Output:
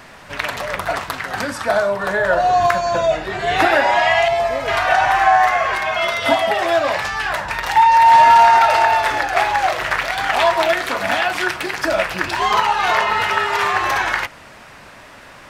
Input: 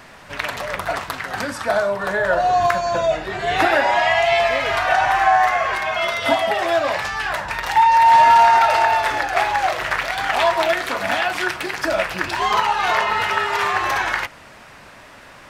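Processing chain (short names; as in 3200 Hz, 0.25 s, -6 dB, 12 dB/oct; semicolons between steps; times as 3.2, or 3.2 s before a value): 4.28–4.68 bell 2600 Hz -12 dB 1.9 oct; gain +2 dB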